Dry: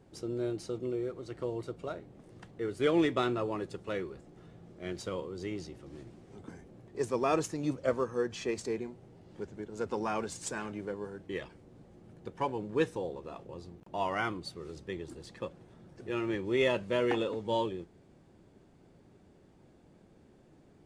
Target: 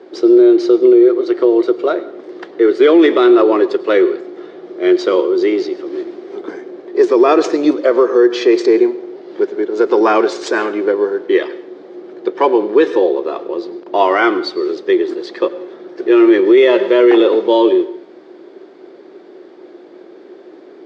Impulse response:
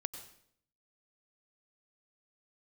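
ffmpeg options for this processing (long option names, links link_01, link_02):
-filter_complex "[0:a]highpass=frequency=340:width=0.5412,highpass=frequency=340:width=1.3066,equalizer=frequency=360:width_type=q:width=4:gain=10,equalizer=frequency=860:width_type=q:width=4:gain=-4,equalizer=frequency=2700:width_type=q:width=4:gain=-6,lowpass=frequency=4600:width=0.5412,lowpass=frequency=4600:width=1.3066,asplit=2[link_01][link_02];[1:a]atrim=start_sample=2205[link_03];[link_02][link_03]afir=irnorm=-1:irlink=0,volume=-3dB[link_04];[link_01][link_04]amix=inputs=2:normalize=0,alimiter=level_in=19dB:limit=-1dB:release=50:level=0:latency=1,volume=-1dB"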